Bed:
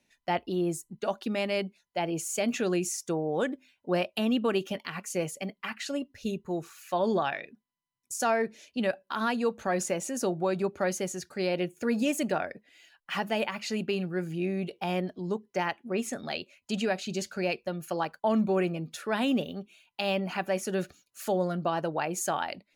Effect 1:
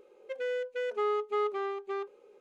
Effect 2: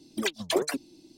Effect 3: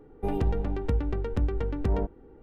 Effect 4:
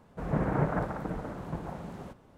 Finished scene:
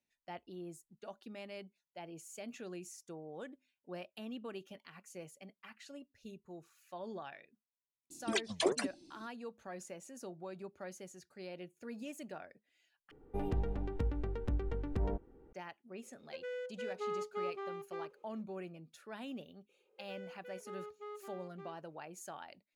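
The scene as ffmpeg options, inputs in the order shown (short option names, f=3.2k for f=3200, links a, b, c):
-filter_complex "[1:a]asplit=2[a][b];[0:a]volume=-18dB[c];[2:a]aresample=22050,aresample=44100[d];[c]asplit=2[e][f];[e]atrim=end=13.114[g];[3:a]atrim=end=2.42,asetpts=PTS-STARTPTS,volume=-8.5dB[h];[f]atrim=start=15.526[i];[d]atrim=end=1.17,asetpts=PTS-STARTPTS,volume=-5.5dB,afade=t=in:d=0.004:c=hsin,afade=t=out:st=1.166:d=0.004:c=hsin,adelay=357210S[j];[a]atrim=end=2.4,asetpts=PTS-STARTPTS,volume=-9dB,afade=t=in:d=0.004:c=hsin,afade=t=out:st=2.396:d=0.004:c=hsin,adelay=16030[k];[b]atrim=end=2.4,asetpts=PTS-STARTPTS,volume=-17.5dB,afade=t=in:d=0.004:c=hsin,afade=t=out:st=2.396:d=0.004:c=hsin,adelay=19690[l];[g][h]acrossfade=d=0.004:c1=hsin:c2=hsin[m];[m][i]acrossfade=d=0.004:c1=hsin:c2=hsin[n];[n][j][k][l]amix=inputs=4:normalize=0"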